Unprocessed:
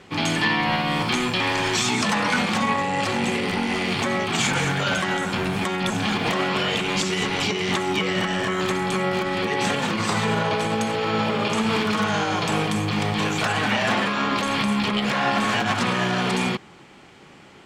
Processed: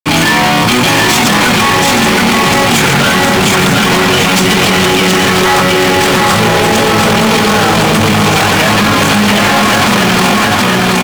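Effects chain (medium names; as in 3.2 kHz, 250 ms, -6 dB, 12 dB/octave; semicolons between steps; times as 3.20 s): time-frequency box 8.73–8.98 s, 470–2000 Hz +10 dB; feedback delay 1154 ms, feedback 39%, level -3 dB; fuzz box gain 31 dB, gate -37 dBFS; tempo 1.6×; trim +6.5 dB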